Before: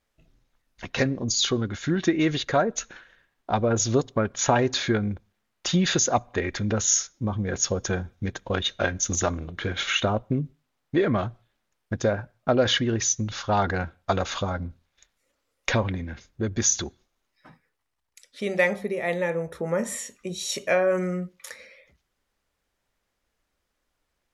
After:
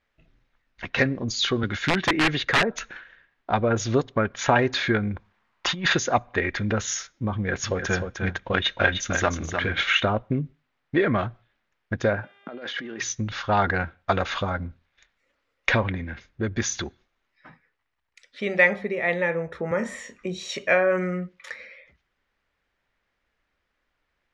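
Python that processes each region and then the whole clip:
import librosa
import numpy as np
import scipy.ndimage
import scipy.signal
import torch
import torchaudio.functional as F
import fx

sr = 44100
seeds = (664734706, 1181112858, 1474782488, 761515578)

y = fx.chain(x, sr, fx.dynamic_eq(hz=850.0, q=2.5, threshold_db=-38.0, ratio=4.0, max_db=4),
    fx.overflow_wrap(gain_db=16.0),
    fx.band_squash(depth_pct=40), at=(1.63, 2.9))
y = fx.chain(y, sr, fx.peak_eq(hz=1000.0, db=9.5, octaves=0.67),
    fx.over_compress(threshold_db=-25.0, ratio=-0.5), at=(5.14, 5.93))
y = fx.chain(y, sr, fx.peak_eq(hz=2200.0, db=2.5, octaves=1.5),
    fx.echo_single(ms=305, db=-6.5), at=(7.33, 9.81))
y = fx.over_compress(y, sr, threshold_db=-32.0, ratio=-1.0, at=(12.22, 13.01), fade=0.02)
y = fx.dmg_buzz(y, sr, base_hz=400.0, harmonics=9, level_db=-62.0, tilt_db=-1, odd_only=False, at=(12.22, 13.01), fade=0.02)
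y = fx.highpass(y, sr, hz=200.0, slope=24, at=(12.22, 13.01), fade=0.02)
y = fx.chain(y, sr, fx.peak_eq(hz=3100.0, db=-4.5, octaves=1.5),
    fx.doubler(ms=27.0, db=-9),
    fx.band_squash(depth_pct=40), at=(19.71, 20.49))
y = scipy.signal.sosfilt(scipy.signal.butter(2, 4200.0, 'lowpass', fs=sr, output='sos'), y)
y = fx.peak_eq(y, sr, hz=1900.0, db=6.5, octaves=1.3)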